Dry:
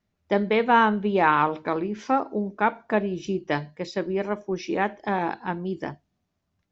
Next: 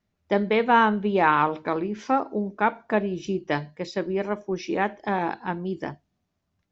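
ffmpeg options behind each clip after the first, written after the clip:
ffmpeg -i in.wav -af anull out.wav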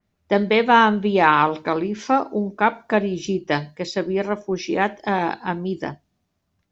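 ffmpeg -i in.wav -af "adynamicequalizer=threshold=0.0126:dfrequency=3000:dqfactor=0.7:tfrequency=3000:tqfactor=0.7:attack=5:release=100:ratio=0.375:range=4:mode=boostabove:tftype=highshelf,volume=4dB" out.wav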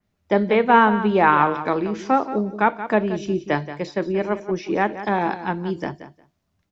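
ffmpeg -i in.wav -filter_complex "[0:a]acrossover=split=410|2400[link_01][link_02][link_03];[link_03]acompressor=threshold=-43dB:ratio=6[link_04];[link_01][link_02][link_04]amix=inputs=3:normalize=0,aecho=1:1:178|356:0.237|0.0379" out.wav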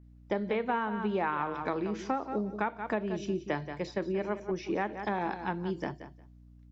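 ffmpeg -i in.wav -af "aeval=exprs='val(0)+0.00501*(sin(2*PI*60*n/s)+sin(2*PI*2*60*n/s)/2+sin(2*PI*3*60*n/s)/3+sin(2*PI*4*60*n/s)/4+sin(2*PI*5*60*n/s)/5)':channel_layout=same,acompressor=threshold=-20dB:ratio=6,volume=-7dB" out.wav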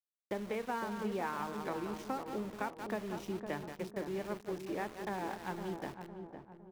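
ffmpeg -i in.wav -filter_complex "[0:a]aeval=exprs='val(0)*gte(abs(val(0)),0.0119)':channel_layout=same,asplit=2[link_01][link_02];[link_02]adelay=508,lowpass=frequency=940:poles=1,volume=-6.5dB,asplit=2[link_03][link_04];[link_04]adelay=508,lowpass=frequency=940:poles=1,volume=0.51,asplit=2[link_05][link_06];[link_06]adelay=508,lowpass=frequency=940:poles=1,volume=0.51,asplit=2[link_07][link_08];[link_08]adelay=508,lowpass=frequency=940:poles=1,volume=0.51,asplit=2[link_09][link_10];[link_10]adelay=508,lowpass=frequency=940:poles=1,volume=0.51,asplit=2[link_11][link_12];[link_12]adelay=508,lowpass=frequency=940:poles=1,volume=0.51[link_13];[link_01][link_03][link_05][link_07][link_09][link_11][link_13]amix=inputs=7:normalize=0,volume=-7dB" out.wav

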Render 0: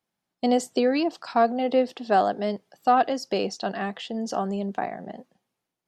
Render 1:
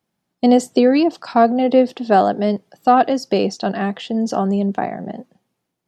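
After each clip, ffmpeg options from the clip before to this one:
ffmpeg -i in.wav -af "equalizer=frequency=140:width=0.33:gain=7,volume=4.5dB" out.wav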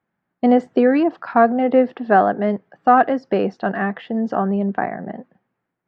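ffmpeg -i in.wav -af "lowpass=frequency=1700:width_type=q:width=2.2,volume=-2dB" out.wav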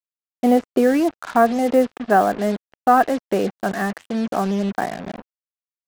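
ffmpeg -i in.wav -af "acrusher=bits=4:mix=0:aa=0.5,volume=-1.5dB" out.wav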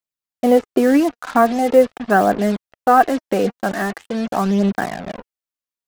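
ffmpeg -i in.wav -af "aphaser=in_gain=1:out_gain=1:delay=4.3:decay=0.37:speed=0.43:type=triangular,volume=2dB" out.wav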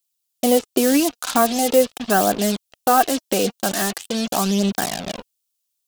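ffmpeg -i in.wav -filter_complex "[0:a]asplit=2[link_01][link_02];[link_02]acompressor=threshold=-22dB:ratio=6,volume=-3dB[link_03];[link_01][link_03]amix=inputs=2:normalize=0,aexciter=amount=5.2:drive=3.8:freq=2700,volume=-5dB" out.wav

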